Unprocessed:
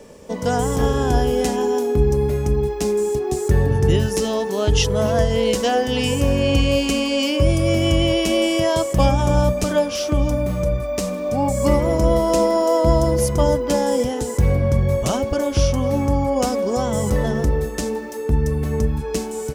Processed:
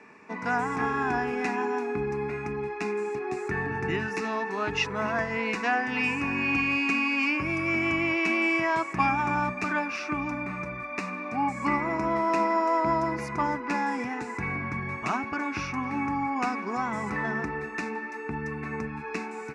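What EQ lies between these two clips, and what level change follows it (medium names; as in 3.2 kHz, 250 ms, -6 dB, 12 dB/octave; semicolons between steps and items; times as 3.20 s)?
high-pass 320 Hz 12 dB/octave; resonant low-pass 2.6 kHz, resonance Q 5.8; static phaser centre 1.3 kHz, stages 4; 0.0 dB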